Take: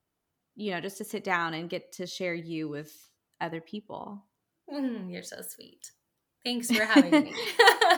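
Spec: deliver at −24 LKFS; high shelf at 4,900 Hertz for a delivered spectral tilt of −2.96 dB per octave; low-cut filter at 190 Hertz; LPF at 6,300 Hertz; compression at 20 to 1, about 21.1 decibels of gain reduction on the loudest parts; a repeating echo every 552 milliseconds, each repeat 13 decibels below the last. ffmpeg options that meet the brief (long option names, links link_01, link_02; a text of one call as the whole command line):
ffmpeg -i in.wav -af "highpass=190,lowpass=6300,highshelf=frequency=4900:gain=8.5,acompressor=threshold=-34dB:ratio=20,aecho=1:1:552|1104|1656:0.224|0.0493|0.0108,volume=16dB" out.wav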